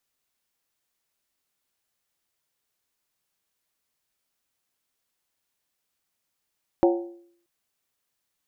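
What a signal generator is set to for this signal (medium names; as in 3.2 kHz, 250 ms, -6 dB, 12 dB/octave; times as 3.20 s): skin hit, lowest mode 345 Hz, decay 0.62 s, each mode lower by 4.5 dB, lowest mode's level -14 dB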